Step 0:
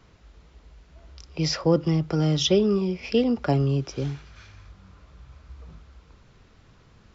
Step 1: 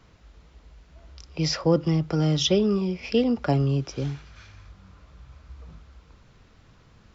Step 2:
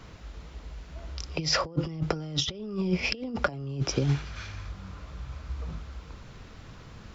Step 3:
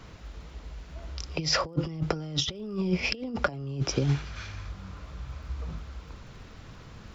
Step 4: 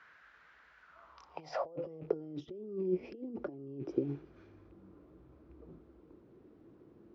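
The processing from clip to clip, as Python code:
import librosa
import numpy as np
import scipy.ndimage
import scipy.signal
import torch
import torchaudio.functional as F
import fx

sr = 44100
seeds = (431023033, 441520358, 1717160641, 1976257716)

y1 = fx.peak_eq(x, sr, hz=390.0, db=-3.0, octaves=0.22)
y2 = fx.over_compress(y1, sr, threshold_db=-29.0, ratio=-0.5)
y2 = y2 * 10.0 ** (1.5 / 20.0)
y3 = fx.dmg_crackle(y2, sr, seeds[0], per_s=50.0, level_db=-56.0)
y4 = fx.rattle_buzz(y3, sr, strikes_db=-29.0, level_db=-33.0)
y4 = fx.filter_sweep_bandpass(y4, sr, from_hz=1600.0, to_hz=340.0, start_s=0.76, end_s=2.31, q=5.2)
y4 = y4 * 10.0 ** (3.0 / 20.0)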